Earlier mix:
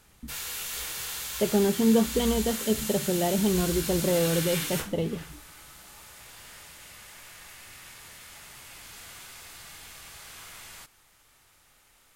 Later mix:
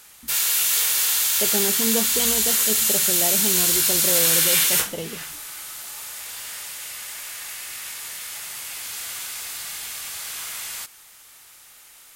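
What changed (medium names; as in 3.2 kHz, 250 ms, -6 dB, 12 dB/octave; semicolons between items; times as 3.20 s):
background +7.5 dB; master: add tilt EQ +2.5 dB/octave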